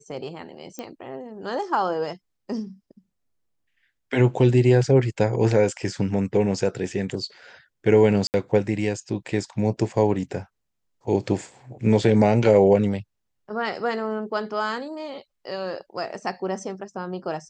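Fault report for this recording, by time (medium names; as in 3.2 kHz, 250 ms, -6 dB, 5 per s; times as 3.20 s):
0.79 s: pop -19 dBFS
8.27–8.34 s: dropout 69 ms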